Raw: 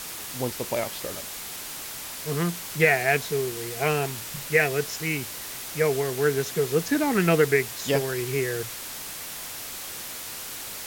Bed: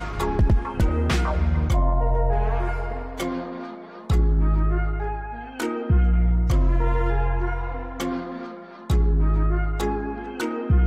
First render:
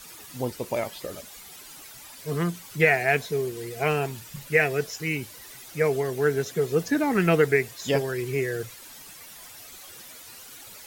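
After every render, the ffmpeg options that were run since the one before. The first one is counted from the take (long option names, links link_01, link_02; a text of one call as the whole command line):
ffmpeg -i in.wav -af "afftdn=noise_reduction=12:noise_floor=-37" out.wav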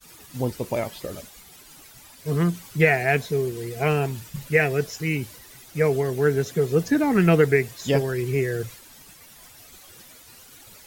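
ffmpeg -i in.wav -af "lowshelf=frequency=270:gain=8,agate=range=-33dB:threshold=-40dB:ratio=3:detection=peak" out.wav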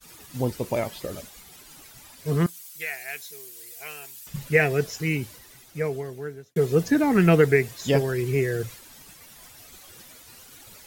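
ffmpeg -i in.wav -filter_complex "[0:a]asettb=1/sr,asplit=3[link_01][link_02][link_03];[link_01]atrim=end=2.464[link_04];[link_02]atrim=start=2.46:end=4.27,asetpts=PTS-STARTPTS,afade=type=in:duration=0.004:curve=qsin,afade=type=out:start_time=1.806:duration=0.004:curve=qsin,aderivative[link_05];[link_03]atrim=start=4.266[link_06];[link_04][link_05]acrossfade=duration=0.004:curve1=hsin:curve2=qsin[link_07];[link_07][link_06]acrossfade=duration=0.004:curve1=qsin:curve2=hsin,asplit=2[link_08][link_09];[link_08]atrim=end=6.56,asetpts=PTS-STARTPTS,afade=type=out:start_time=5.05:duration=1.51[link_10];[link_09]atrim=start=6.56,asetpts=PTS-STARTPTS,afade=type=in:duration=0.004:curve=hsin[link_11];[link_10][link_11]concat=n=2:v=0:a=1" out.wav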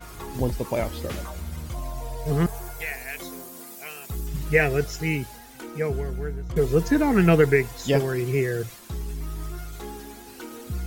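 ffmpeg -i in.wav -i bed.wav -filter_complex "[1:a]volume=-12.5dB[link_01];[0:a][link_01]amix=inputs=2:normalize=0" out.wav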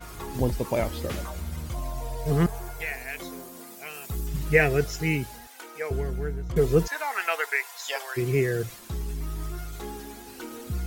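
ffmpeg -i in.wav -filter_complex "[0:a]asettb=1/sr,asplit=3[link_01][link_02][link_03];[link_01]atrim=end=2.464[link_04];[link_02]atrim=start=2.46:end=3.94,asetpts=PTS-STARTPTS,afade=type=in:duration=0.004:curve=qsin,afade=type=out:start_time=1.476:duration=0.004:curve=qsin,highshelf=frequency=5500:gain=-5[link_05];[link_03]atrim=start=3.936[link_06];[link_04][link_05]acrossfade=duration=0.004:curve1=hsin:curve2=qsin[link_07];[link_07][link_06]acrossfade=duration=0.004:curve1=qsin:curve2=hsin,asettb=1/sr,asplit=3[link_08][link_09][link_10];[link_08]atrim=end=5.474[link_11];[link_09]atrim=start=5.47:end=5.91,asetpts=PTS-STARTPTS,afade=type=in:duration=0.004:curve=qsin,afade=type=out:start_time=0.436:duration=0.004:curve=qsin,highpass=630[link_12];[link_10]atrim=start=5.906[link_13];[link_11][link_12]acrossfade=duration=0.004:curve1=hsin:curve2=qsin[link_14];[link_14][link_13]acrossfade=duration=0.004:curve1=qsin:curve2=hsin,asplit=3[link_15][link_16][link_17];[link_15]afade=type=out:start_time=6.86:duration=0.02[link_18];[link_16]highpass=frequency=770:width=0.5412,highpass=frequency=770:width=1.3066,afade=type=in:start_time=6.86:duration=0.02,afade=type=out:start_time=8.16:duration=0.02[link_19];[link_17]afade=type=in:start_time=8.16:duration=0.02[link_20];[link_18][link_19][link_20]amix=inputs=3:normalize=0" out.wav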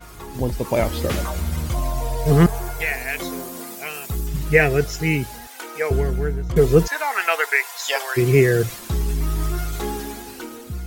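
ffmpeg -i in.wav -af "dynaudnorm=framelen=160:gausssize=9:maxgain=10.5dB" out.wav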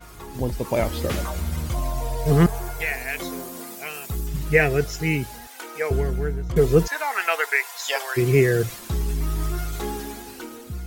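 ffmpeg -i in.wav -af "volume=-2.5dB" out.wav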